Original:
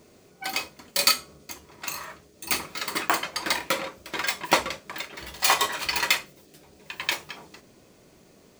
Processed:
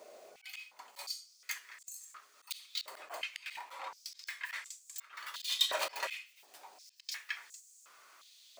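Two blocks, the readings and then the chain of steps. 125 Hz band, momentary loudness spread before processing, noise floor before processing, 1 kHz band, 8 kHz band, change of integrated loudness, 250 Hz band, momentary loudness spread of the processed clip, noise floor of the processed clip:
under -35 dB, 19 LU, -56 dBFS, -17.0 dB, -14.5 dB, -13.5 dB, under -30 dB, 20 LU, -65 dBFS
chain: slow attack 505 ms; step-sequenced high-pass 2.8 Hz 610–7300 Hz; trim -2 dB

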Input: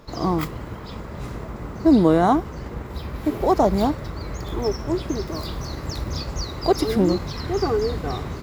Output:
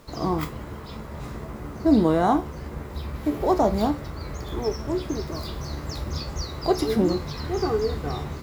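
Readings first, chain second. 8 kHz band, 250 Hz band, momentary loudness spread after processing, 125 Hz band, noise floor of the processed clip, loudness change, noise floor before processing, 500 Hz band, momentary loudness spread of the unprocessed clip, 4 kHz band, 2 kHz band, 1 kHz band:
-2.5 dB, -3.0 dB, 15 LU, -3.0 dB, -38 dBFS, -3.0 dB, -35 dBFS, -2.5 dB, 16 LU, -2.5 dB, -2.5 dB, -3.0 dB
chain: bit crusher 9-bit; feedback comb 73 Hz, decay 0.26 s, harmonics all, mix 70%; trim +2.5 dB

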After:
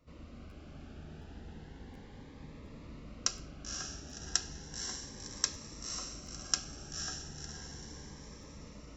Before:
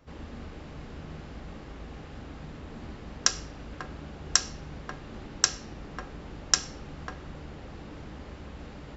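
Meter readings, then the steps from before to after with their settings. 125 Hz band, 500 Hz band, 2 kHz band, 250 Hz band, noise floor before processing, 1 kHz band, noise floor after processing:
-6.5 dB, -8.5 dB, -9.5 dB, -6.5 dB, -45 dBFS, -9.5 dB, -52 dBFS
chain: on a send: echo that smears into a reverb 521 ms, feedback 49%, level -4.5 dB; on the sum: crackling interface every 0.72 s, samples 512, repeat, from 0.49 s; Shepard-style phaser rising 0.34 Hz; trim -8 dB

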